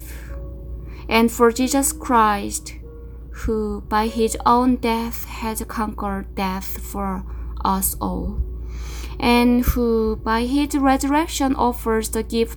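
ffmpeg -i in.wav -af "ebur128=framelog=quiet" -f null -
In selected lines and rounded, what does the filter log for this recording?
Integrated loudness:
  I:         -20.4 LUFS
  Threshold: -31.1 LUFS
Loudness range:
  LRA:         5.6 LU
  Threshold: -41.2 LUFS
  LRA low:   -24.8 LUFS
  LRA high:  -19.2 LUFS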